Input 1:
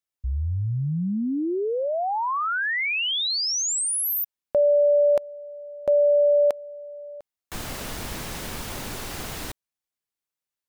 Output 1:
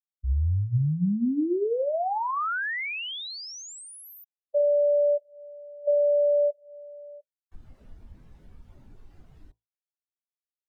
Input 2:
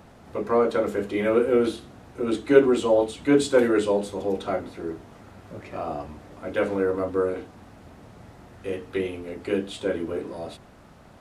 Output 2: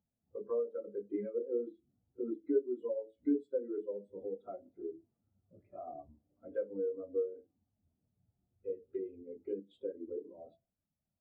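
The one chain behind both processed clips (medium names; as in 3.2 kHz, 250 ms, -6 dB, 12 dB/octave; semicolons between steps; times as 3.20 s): compression 8:1, threshold -29 dBFS; de-hum 55.32 Hz, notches 20; spectral contrast expander 2.5:1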